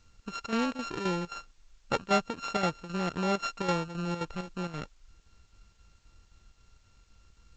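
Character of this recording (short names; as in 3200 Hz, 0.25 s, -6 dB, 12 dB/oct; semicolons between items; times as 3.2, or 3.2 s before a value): a buzz of ramps at a fixed pitch in blocks of 32 samples; chopped level 3.8 Hz, depth 60%, duty 75%; a quantiser's noise floor 12-bit, dither triangular; G.722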